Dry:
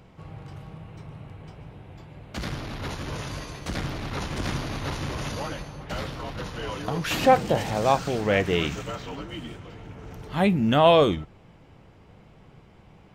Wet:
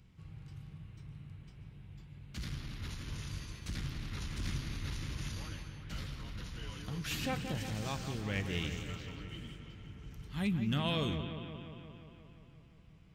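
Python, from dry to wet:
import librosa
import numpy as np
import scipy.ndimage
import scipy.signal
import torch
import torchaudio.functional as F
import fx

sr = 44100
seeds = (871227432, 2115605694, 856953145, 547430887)

y = fx.tone_stack(x, sr, knobs='6-0-2')
y = np.clip(y, -10.0 ** (-31.0 / 20.0), 10.0 ** (-31.0 / 20.0))
y = fx.echo_bbd(y, sr, ms=176, stages=4096, feedback_pct=70, wet_db=-9)
y = F.gain(torch.from_numpy(y), 6.5).numpy()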